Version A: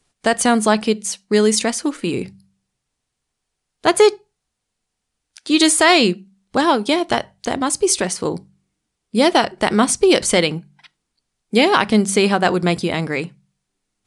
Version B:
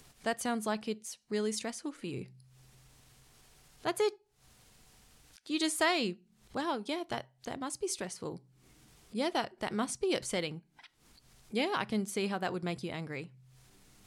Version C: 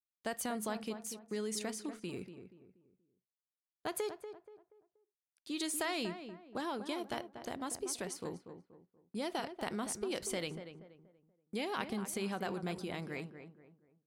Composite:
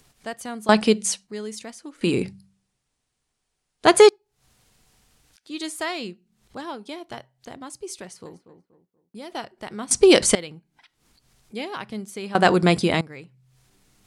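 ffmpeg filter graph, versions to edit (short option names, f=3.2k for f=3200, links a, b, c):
-filter_complex "[0:a]asplit=4[a][b][c][d];[1:a]asplit=6[e][f][g][h][i][j];[e]atrim=end=0.692[k];[a]atrim=start=0.688:end=1.272[l];[f]atrim=start=1.268:end=2.012[m];[b]atrim=start=2.008:end=4.092[n];[g]atrim=start=4.088:end=8.262[o];[2:a]atrim=start=8.258:end=9.322[p];[h]atrim=start=9.318:end=9.912[q];[c]atrim=start=9.908:end=10.352[r];[i]atrim=start=10.348:end=12.352[s];[d]atrim=start=12.348:end=13.012[t];[j]atrim=start=13.008[u];[k][l]acrossfade=d=0.004:c1=hsin:c2=hsin[v];[v][m]acrossfade=d=0.004:c1=hsin:c2=hsin[w];[w][n]acrossfade=d=0.004:c1=hsin:c2=hsin[x];[x][o]acrossfade=d=0.004:c1=hsin:c2=hsin[y];[y][p]acrossfade=d=0.004:c1=hsin:c2=hsin[z];[z][q]acrossfade=d=0.004:c1=hsin:c2=hsin[aa];[aa][r]acrossfade=d=0.004:c1=hsin:c2=hsin[ab];[ab][s]acrossfade=d=0.004:c1=hsin:c2=hsin[ac];[ac][t]acrossfade=d=0.004:c1=hsin:c2=hsin[ad];[ad][u]acrossfade=d=0.004:c1=hsin:c2=hsin"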